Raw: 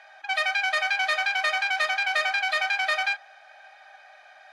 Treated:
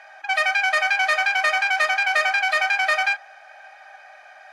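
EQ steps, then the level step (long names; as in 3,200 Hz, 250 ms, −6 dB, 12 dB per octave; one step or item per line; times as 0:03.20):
low-shelf EQ 130 Hz −4.5 dB
parametric band 3,700 Hz −8 dB 0.48 octaves
+5.5 dB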